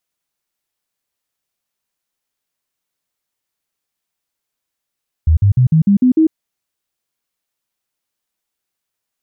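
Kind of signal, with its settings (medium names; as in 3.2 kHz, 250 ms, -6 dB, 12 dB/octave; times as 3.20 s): stepped sine 79.5 Hz up, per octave 3, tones 7, 0.10 s, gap 0.05 s -7 dBFS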